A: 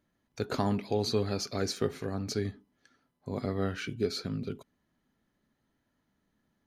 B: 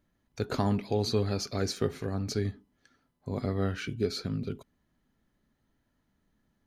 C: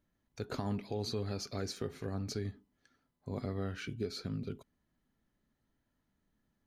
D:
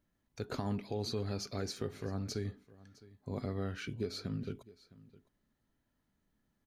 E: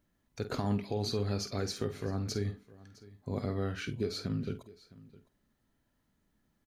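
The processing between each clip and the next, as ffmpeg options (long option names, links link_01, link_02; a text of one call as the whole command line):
ffmpeg -i in.wav -af "lowshelf=frequency=77:gain=11" out.wav
ffmpeg -i in.wav -af "alimiter=limit=-20dB:level=0:latency=1:release=182,volume=-5.5dB" out.wav
ffmpeg -i in.wav -af "aecho=1:1:660:0.0944" out.wav
ffmpeg -i in.wav -filter_complex "[0:a]asplit=2[link_01][link_02];[link_02]adelay=49,volume=-11.5dB[link_03];[link_01][link_03]amix=inputs=2:normalize=0,volume=3.5dB" out.wav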